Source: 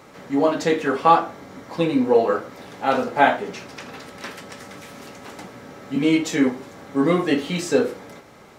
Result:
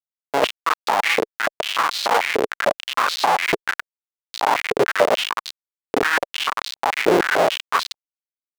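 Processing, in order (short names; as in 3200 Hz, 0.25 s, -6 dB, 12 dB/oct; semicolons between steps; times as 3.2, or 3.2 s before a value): gate with hold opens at -37 dBFS; echoes that change speed 0.443 s, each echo -6 st, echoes 3; in parallel at -3 dB: limiter -11 dBFS, peak gain reduction 11 dB; on the sum: tilt -3 dB/oct; on a send: feedback echo 85 ms, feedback 57%, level -13.5 dB; on the sum: Schmitt trigger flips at -6.5 dBFS; high shelf 4800 Hz -9 dB; stepped high-pass 6.8 Hz 430–4100 Hz; gain -2 dB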